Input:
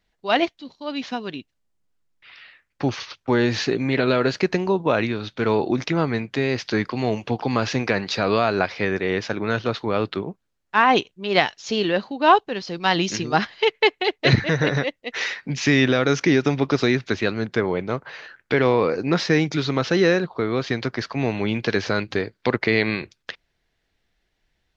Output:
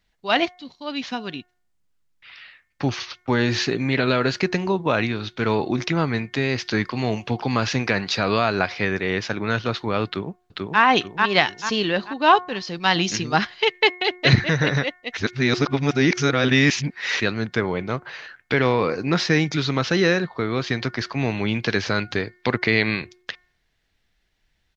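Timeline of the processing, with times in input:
10.06–10.81 echo throw 0.44 s, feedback 40%, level -2 dB
15.17–17.2 reverse
whole clip: bell 460 Hz -5 dB 2 oct; de-hum 360.5 Hz, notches 6; gain +2.5 dB

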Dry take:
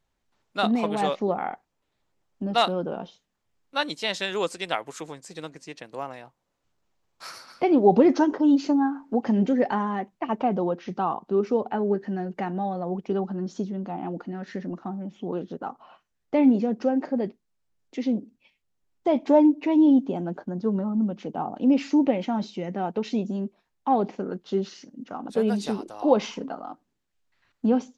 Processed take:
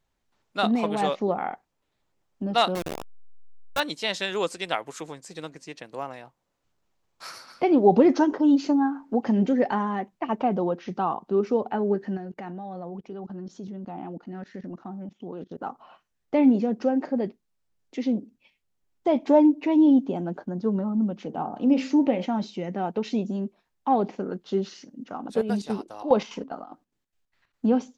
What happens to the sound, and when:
2.75–3.8 level-crossing sampler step -24 dBFS
12.17–15.58 level quantiser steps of 18 dB
21.25–22.26 de-hum 65.33 Hz, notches 29
25.29–27.65 chopper 4.9 Hz, depth 65%, duty 60%

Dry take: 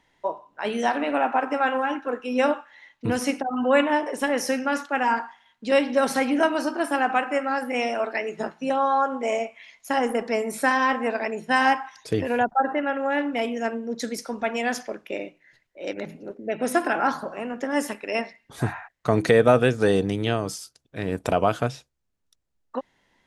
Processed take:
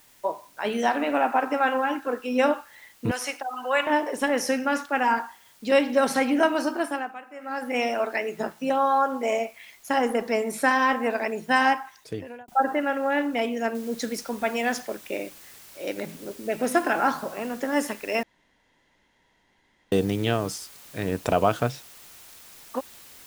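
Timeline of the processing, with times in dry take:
3.11–3.87 HPF 760 Hz
6.75–7.75 dip -17.5 dB, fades 0.38 s
11.56–12.48 fade out linear
13.75 noise floor step -57 dB -48 dB
18.23–19.92 room tone

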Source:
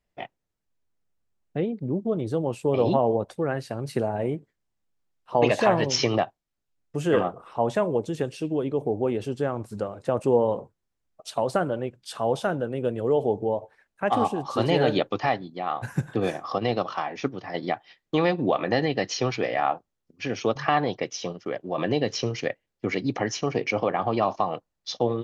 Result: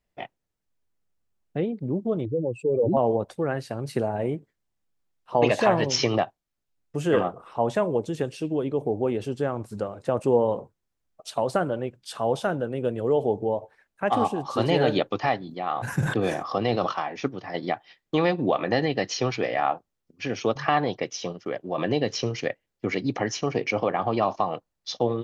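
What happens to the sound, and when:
2.25–2.97 spectral contrast raised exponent 2.4
15.38–16.92 sustainer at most 58 dB/s

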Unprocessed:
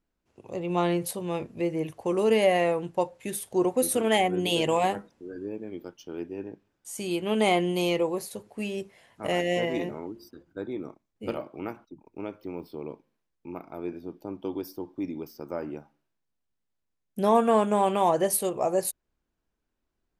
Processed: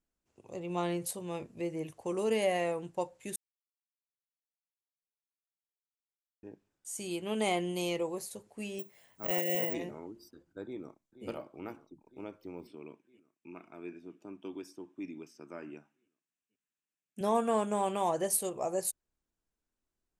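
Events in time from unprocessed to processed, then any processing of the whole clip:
3.36–6.43 mute
8.79–9.74 careless resampling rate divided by 2×, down none, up zero stuff
10.64–11.27 echo throw 0.48 s, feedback 75%, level -13 dB
12.67–17.21 speaker cabinet 170–9700 Hz, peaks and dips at 510 Hz -9 dB, 820 Hz -7 dB, 1700 Hz +5 dB, 2600 Hz +9 dB, 4500 Hz -9 dB
whole clip: bell 7700 Hz +8 dB 0.97 oct; gain -8 dB

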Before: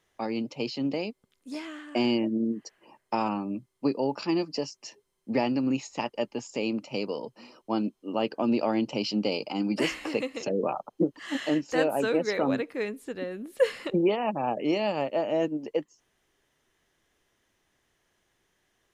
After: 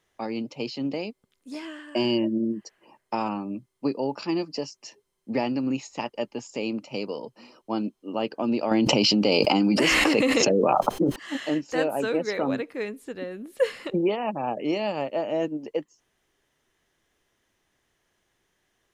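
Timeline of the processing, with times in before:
1.62–2.61 ripple EQ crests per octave 1.3, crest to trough 8 dB
8.71–11.16 fast leveller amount 100%

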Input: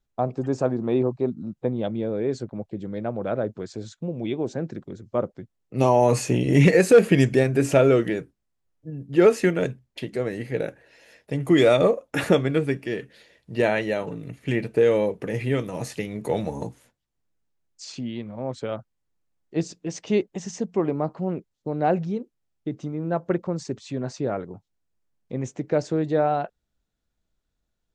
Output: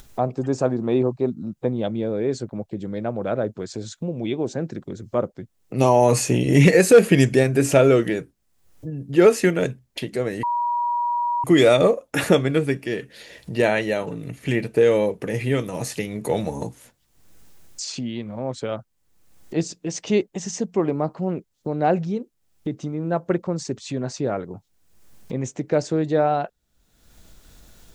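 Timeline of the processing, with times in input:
10.43–11.44 bleep 959 Hz -22 dBFS
whole clip: high shelf 5400 Hz +7.5 dB; upward compressor, threshold -28 dBFS; gain +2 dB

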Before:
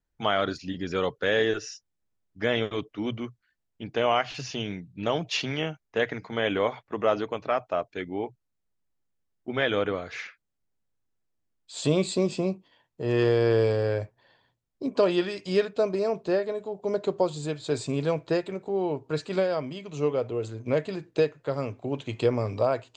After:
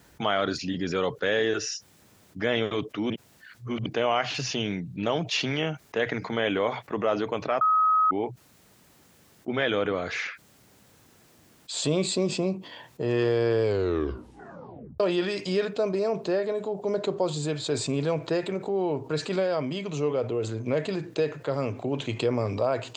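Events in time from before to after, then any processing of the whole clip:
3.1–3.86 reverse
7.61–8.11 bleep 1270 Hz -14 dBFS
13.64 tape stop 1.36 s
whole clip: HPF 100 Hz; fast leveller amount 50%; gain -4 dB

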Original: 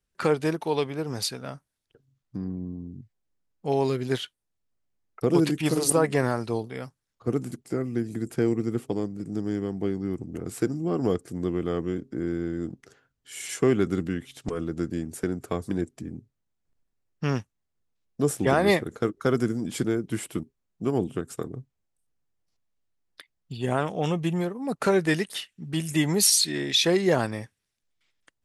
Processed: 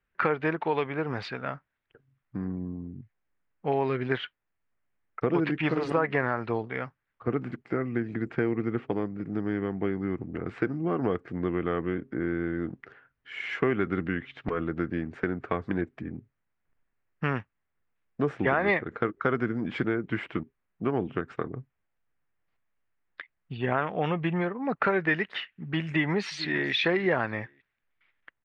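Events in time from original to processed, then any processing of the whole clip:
25.87–26.73 echo throw 0.44 s, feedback 15%, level -18 dB
whole clip: LPF 2000 Hz 24 dB/oct; tilt shelf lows -9.5 dB, about 1400 Hz; compressor 2.5:1, threshold -32 dBFS; gain +8.5 dB

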